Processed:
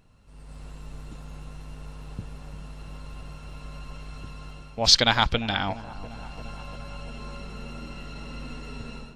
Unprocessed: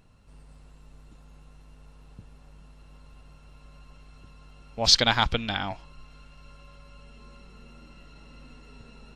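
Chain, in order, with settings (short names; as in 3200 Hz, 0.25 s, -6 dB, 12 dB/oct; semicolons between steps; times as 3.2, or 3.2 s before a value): AGC gain up to 12 dB; on a send: dark delay 0.346 s, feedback 71%, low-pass 990 Hz, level -15 dB; on the sum: gain -1 dB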